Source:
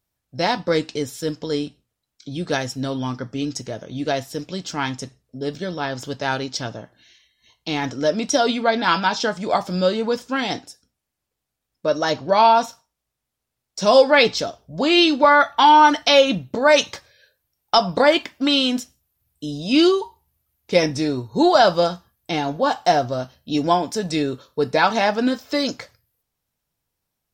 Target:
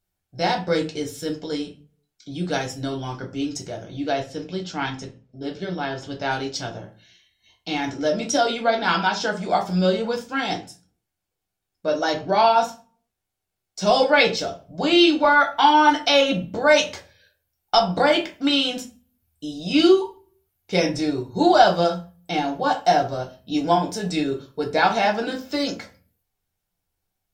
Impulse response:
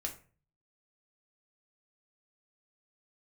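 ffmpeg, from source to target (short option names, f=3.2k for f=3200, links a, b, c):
-filter_complex "[0:a]asettb=1/sr,asplit=3[a][b][c];[a]atrim=end=3.964[d];[b]atrim=start=3.96:end=6.31,asetpts=PTS-STARTPTS,afade=t=in:d=0.004:c=qsin,afade=t=out:st=2.346:d=0.004:c=qsin,lowpass=5.2k[e];[c]atrim=start=6.306[f];[d][e]acrossfade=d=0.004:c1=hsin:c2=qsin[g];[g][f]acrossfade=d=0.004:c1=qsin:c2=hsin[h];[1:a]atrim=start_sample=2205,asetrate=52920,aresample=44100[i];[h][i]afir=irnorm=-1:irlink=0"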